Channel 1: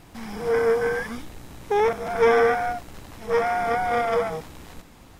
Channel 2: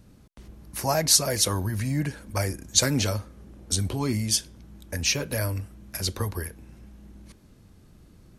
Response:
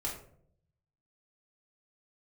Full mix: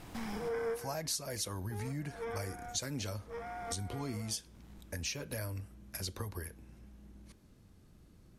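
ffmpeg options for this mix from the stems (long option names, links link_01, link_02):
-filter_complex "[0:a]volume=-1.5dB[link_01];[1:a]volume=-7.5dB,asplit=2[link_02][link_03];[link_03]apad=whole_len=229000[link_04];[link_01][link_04]sidechaincompress=threshold=-52dB:ratio=10:attack=34:release=978[link_05];[link_05][link_02]amix=inputs=2:normalize=0,acompressor=threshold=-37dB:ratio=3"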